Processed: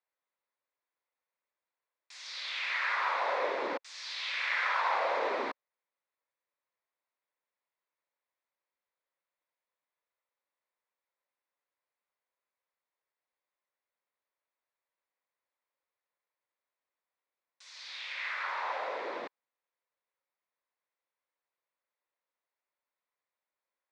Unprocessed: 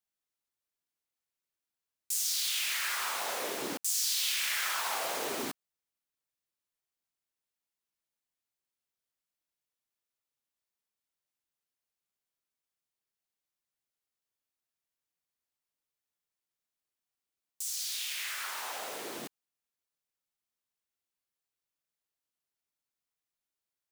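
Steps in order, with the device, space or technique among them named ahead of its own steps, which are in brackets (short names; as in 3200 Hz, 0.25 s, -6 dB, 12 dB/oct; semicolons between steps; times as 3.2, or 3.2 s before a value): phone earpiece (speaker cabinet 400–3500 Hz, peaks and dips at 540 Hz +8 dB, 1000 Hz +7 dB, 2000 Hz +4 dB, 3000 Hz -9 dB); gain +2.5 dB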